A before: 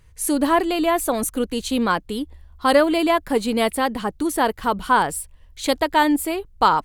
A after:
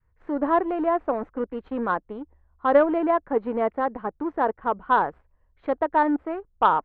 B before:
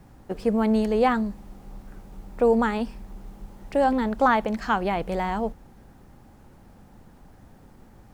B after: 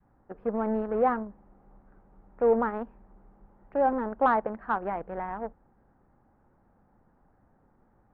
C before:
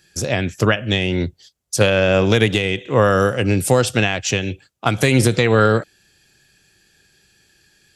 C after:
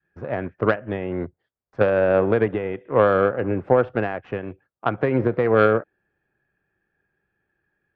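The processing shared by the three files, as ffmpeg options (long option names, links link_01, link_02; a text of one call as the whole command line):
ffmpeg -i in.wav -filter_complex "[0:a]lowshelf=frequency=340:gain=-7,asplit=2[link_01][link_02];[link_02]acrusher=bits=3:mix=0:aa=0.5,volume=-3.5dB[link_03];[link_01][link_03]amix=inputs=2:normalize=0,lowpass=frequency=1600:width=0.5412,lowpass=frequency=1600:width=1.3066,aeval=exprs='1.12*(cos(1*acos(clip(val(0)/1.12,-1,1)))-cos(1*PI/2))+0.141*(cos(3*acos(clip(val(0)/1.12,-1,1)))-cos(3*PI/2))+0.00794*(cos(4*acos(clip(val(0)/1.12,-1,1)))-cos(4*PI/2))':channel_layout=same,adynamicequalizer=threshold=0.0562:dfrequency=460:dqfactor=0.74:tfrequency=460:tqfactor=0.74:attack=5:release=100:ratio=0.375:range=2.5:mode=boostabove:tftype=bell,volume=-5dB" out.wav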